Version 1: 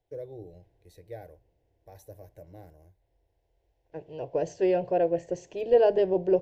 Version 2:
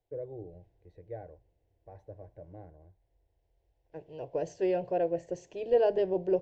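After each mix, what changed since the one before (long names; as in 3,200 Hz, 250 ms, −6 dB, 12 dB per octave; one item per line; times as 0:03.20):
first voice: add low-pass filter 1,400 Hz 12 dB per octave
second voice −4.5 dB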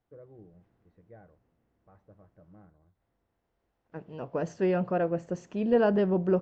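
first voice −12.0 dB
master: remove phaser with its sweep stopped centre 520 Hz, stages 4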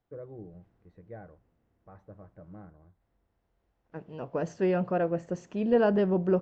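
first voice +7.5 dB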